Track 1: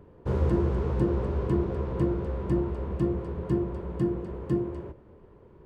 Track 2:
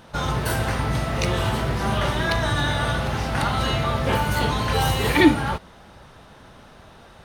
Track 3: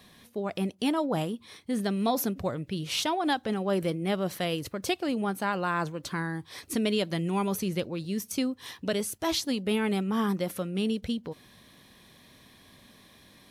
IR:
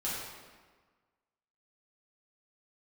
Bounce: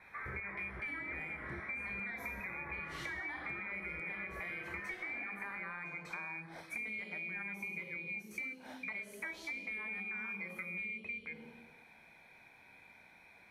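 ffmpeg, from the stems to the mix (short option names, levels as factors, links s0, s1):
-filter_complex "[0:a]acompressor=threshold=0.0224:ratio=6,aeval=exprs='val(0)*pow(10,-20*if(lt(mod(-2.5*n/s,1),2*abs(-2.5)/1000),1-mod(-2.5*n/s,1)/(2*abs(-2.5)/1000),(mod(-2.5*n/s,1)-2*abs(-2.5)/1000)/(1-2*abs(-2.5)/1000))/20)':c=same,volume=0.708[s0];[1:a]highpass=f=290:w=0.5412,highpass=f=290:w=1.3066,asoftclip=type=tanh:threshold=0.0891,volume=0.237[s1];[2:a]volume=0.708,asplit=2[s2][s3];[s3]volume=0.141[s4];[s1][s2]amix=inputs=2:normalize=0,lowpass=f=2200:t=q:w=0.5098,lowpass=f=2200:t=q:w=0.6013,lowpass=f=2200:t=q:w=0.9,lowpass=f=2200:t=q:w=2.563,afreqshift=-2600,alimiter=limit=0.0708:level=0:latency=1,volume=1[s5];[3:a]atrim=start_sample=2205[s6];[s4][s6]afir=irnorm=-1:irlink=0[s7];[s0][s5][s7]amix=inputs=3:normalize=0,bandreject=f=105.2:t=h:w=4,bandreject=f=210.4:t=h:w=4,bandreject=f=315.6:t=h:w=4,bandreject=f=420.8:t=h:w=4,bandreject=f=526:t=h:w=4,bandreject=f=631.2:t=h:w=4,bandreject=f=736.4:t=h:w=4,bandreject=f=841.6:t=h:w=4,bandreject=f=946.8:t=h:w=4,bandreject=f=1052:t=h:w=4,bandreject=f=1157.2:t=h:w=4,bandreject=f=1262.4:t=h:w=4,bandreject=f=1367.6:t=h:w=4,bandreject=f=1472.8:t=h:w=4,bandreject=f=1578:t=h:w=4,bandreject=f=1683.2:t=h:w=4,bandreject=f=1788.4:t=h:w=4,bandreject=f=1893.6:t=h:w=4,bandreject=f=1998.8:t=h:w=4,bandreject=f=2104:t=h:w=4,bandreject=f=2209.2:t=h:w=4,bandreject=f=2314.4:t=h:w=4,bandreject=f=2419.6:t=h:w=4,bandreject=f=2524.8:t=h:w=4,bandreject=f=2630:t=h:w=4,bandreject=f=2735.2:t=h:w=4,bandreject=f=2840.4:t=h:w=4,bandreject=f=2945.6:t=h:w=4,bandreject=f=3050.8:t=h:w=4,acompressor=threshold=0.01:ratio=6"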